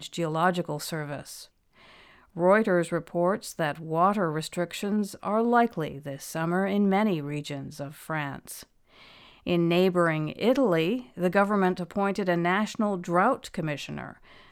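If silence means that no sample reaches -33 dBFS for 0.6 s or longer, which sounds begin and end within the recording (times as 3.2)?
2.37–8.63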